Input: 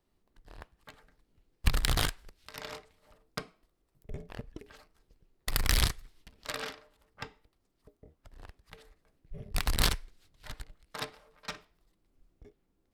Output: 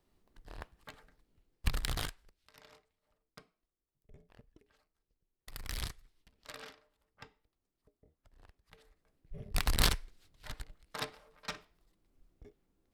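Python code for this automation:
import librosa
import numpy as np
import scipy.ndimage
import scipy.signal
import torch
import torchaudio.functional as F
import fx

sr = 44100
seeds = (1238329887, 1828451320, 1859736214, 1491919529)

y = fx.gain(x, sr, db=fx.line((0.76, 2.0), (2.07, -9.0), (2.69, -17.5), (5.5, -17.5), (5.91, -11.0), (8.47, -11.0), (9.5, -1.0)))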